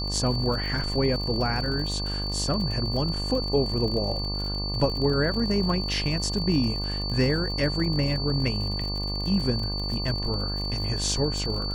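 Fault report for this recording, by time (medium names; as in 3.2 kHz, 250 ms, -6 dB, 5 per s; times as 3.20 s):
buzz 50 Hz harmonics 24 -31 dBFS
crackle 56 per s -32 dBFS
whine 4.5 kHz -31 dBFS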